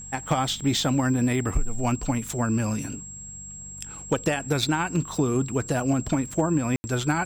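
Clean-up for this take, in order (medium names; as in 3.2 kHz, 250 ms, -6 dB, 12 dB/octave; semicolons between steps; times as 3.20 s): clip repair -14 dBFS; de-hum 48.3 Hz, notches 4; band-stop 7.6 kHz, Q 30; room tone fill 6.76–6.84 s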